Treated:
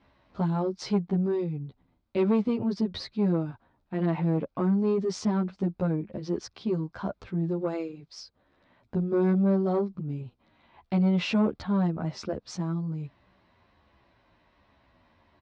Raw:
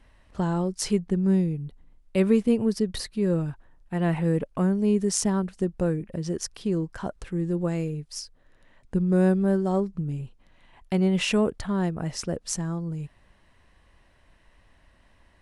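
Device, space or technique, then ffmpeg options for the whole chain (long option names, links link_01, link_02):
barber-pole flanger into a guitar amplifier: -filter_complex "[0:a]asplit=2[link_01][link_02];[link_02]adelay=11.3,afreqshift=-1.3[link_03];[link_01][link_03]amix=inputs=2:normalize=1,asoftclip=type=tanh:threshold=-20.5dB,highpass=96,equalizer=frequency=150:width_type=q:width=4:gain=-5,equalizer=frequency=470:width_type=q:width=4:gain=-4,equalizer=frequency=1800:width_type=q:width=4:gain=-8,equalizer=frequency=2900:width_type=q:width=4:gain=-7,lowpass=frequency=4400:width=0.5412,lowpass=frequency=4400:width=1.3066,volume=4.5dB"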